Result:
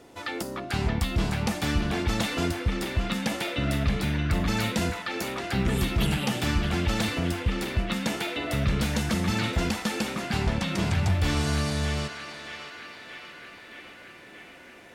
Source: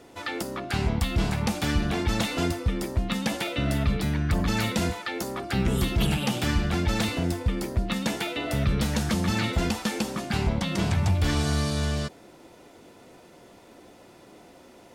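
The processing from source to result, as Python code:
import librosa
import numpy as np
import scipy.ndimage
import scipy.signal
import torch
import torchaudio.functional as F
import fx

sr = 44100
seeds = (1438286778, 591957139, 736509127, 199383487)

y = fx.echo_banded(x, sr, ms=624, feedback_pct=78, hz=2000.0, wet_db=-5.0)
y = F.gain(torch.from_numpy(y), -1.0).numpy()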